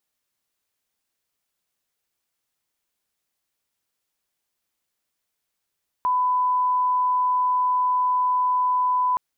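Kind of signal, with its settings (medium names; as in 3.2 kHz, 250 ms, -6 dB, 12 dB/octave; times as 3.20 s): line-up tone -18 dBFS 3.12 s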